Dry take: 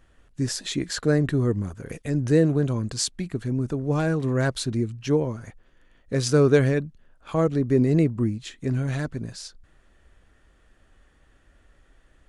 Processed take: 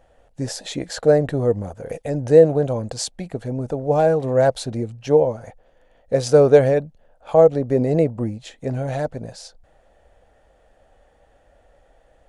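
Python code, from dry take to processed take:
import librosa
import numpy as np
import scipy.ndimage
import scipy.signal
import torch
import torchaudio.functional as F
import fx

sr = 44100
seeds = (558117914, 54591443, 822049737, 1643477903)

y = fx.band_shelf(x, sr, hz=640.0, db=14.5, octaves=1.1)
y = y * librosa.db_to_amplitude(-1.0)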